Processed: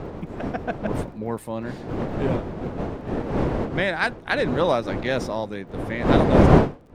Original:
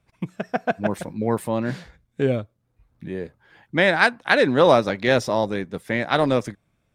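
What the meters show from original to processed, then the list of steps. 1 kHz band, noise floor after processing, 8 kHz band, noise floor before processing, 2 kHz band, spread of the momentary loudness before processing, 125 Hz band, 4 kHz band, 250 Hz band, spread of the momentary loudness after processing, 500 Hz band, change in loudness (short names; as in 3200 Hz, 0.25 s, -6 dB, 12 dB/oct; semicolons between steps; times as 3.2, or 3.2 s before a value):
-2.0 dB, -43 dBFS, n/a, -70 dBFS, -5.5 dB, 17 LU, +5.5 dB, -5.5 dB, +2.0 dB, 15 LU, -2.0 dB, -2.0 dB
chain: wind noise 430 Hz -18 dBFS; crackle 40/s -43 dBFS; gain -6 dB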